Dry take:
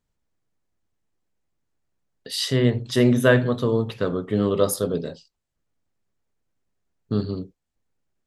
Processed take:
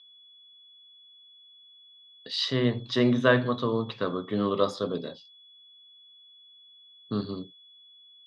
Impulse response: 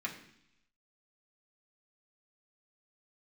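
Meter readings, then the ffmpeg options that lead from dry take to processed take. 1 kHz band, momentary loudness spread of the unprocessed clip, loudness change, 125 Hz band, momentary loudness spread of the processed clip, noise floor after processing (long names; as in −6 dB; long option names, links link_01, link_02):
+1.0 dB, 13 LU, −5.0 dB, −8.0 dB, 14 LU, −55 dBFS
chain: -af "aeval=exprs='val(0)+0.00316*sin(2*PI*3400*n/s)':channel_layout=same,highpass=frequency=120:width=0.5412,highpass=frequency=120:width=1.3066,equalizer=frequency=160:width_type=q:width=4:gain=-6,equalizer=frequency=430:width_type=q:width=4:gain=-3,equalizer=frequency=1100:width_type=q:width=4:gain=8,equalizer=frequency=3900:width_type=q:width=4:gain=5,lowpass=frequency=5200:width=0.5412,lowpass=frequency=5200:width=1.3066,volume=-4dB"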